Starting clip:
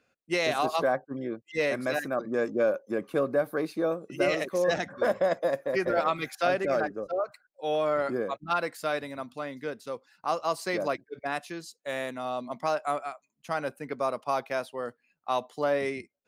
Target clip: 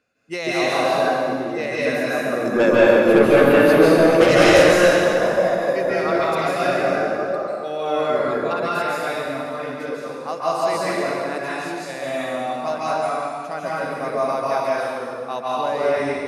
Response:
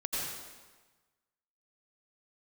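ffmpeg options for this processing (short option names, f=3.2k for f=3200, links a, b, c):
-filter_complex "[0:a]bandreject=f=3.2k:w=16,asettb=1/sr,asplit=3[a][b][c];[a]atrim=end=2.454[d];[b]atrim=start=2.45:end=4.71,asetpts=PTS-STARTPTS,afade=t=in:d=0.004:c=qsin,afade=t=out:st=2.256:d=0.004:c=qsin,aeval=exprs='0.2*sin(PI/2*2.51*val(0)/0.2)':c=same[e];[c]atrim=start=4.706[f];[d][e]acrossfade=d=0.004:c1=hsin:c2=qsin[g];[g][f]acrossfade=d=0.004:c1=qsin:c2=hsin[h];[1:a]atrim=start_sample=2205,asetrate=26460,aresample=44100[i];[h][i]afir=irnorm=-1:irlink=0,volume=-1.5dB"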